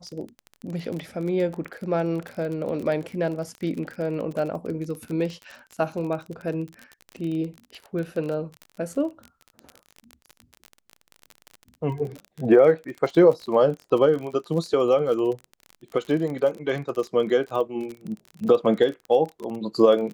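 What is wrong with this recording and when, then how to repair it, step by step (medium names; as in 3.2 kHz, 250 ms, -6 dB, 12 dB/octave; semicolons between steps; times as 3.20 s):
crackle 32 per s -30 dBFS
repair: de-click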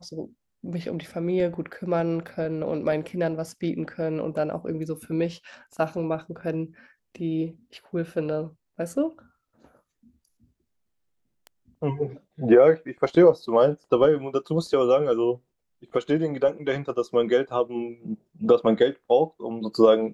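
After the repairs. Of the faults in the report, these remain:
nothing left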